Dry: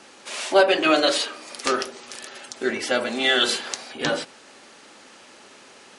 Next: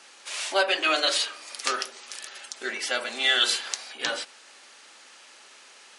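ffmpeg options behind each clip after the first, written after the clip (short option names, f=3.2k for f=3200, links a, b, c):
-af "highpass=f=1.5k:p=1"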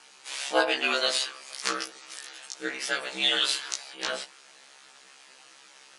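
-af "aeval=exprs='val(0)*sin(2*PI*68*n/s)':c=same,afftfilt=real='re*1.73*eq(mod(b,3),0)':imag='im*1.73*eq(mod(b,3),0)':win_size=2048:overlap=0.75,volume=3dB"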